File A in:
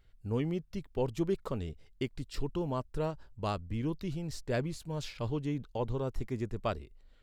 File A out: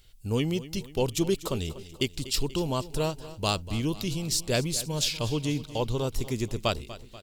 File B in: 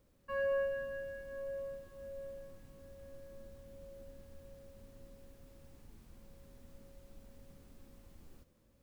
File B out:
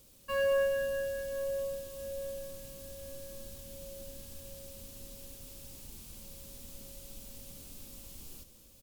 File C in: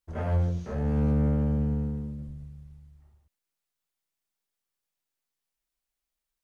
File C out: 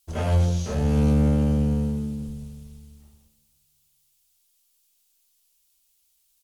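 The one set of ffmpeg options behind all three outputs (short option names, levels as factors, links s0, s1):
-af "aecho=1:1:242|484|726|968|1210:0.158|0.0856|0.0462|0.025|0.0135,aexciter=amount=4.9:drive=3.6:freq=2600,volume=1.78" -ar 48000 -c:a libmp3lame -b:a 320k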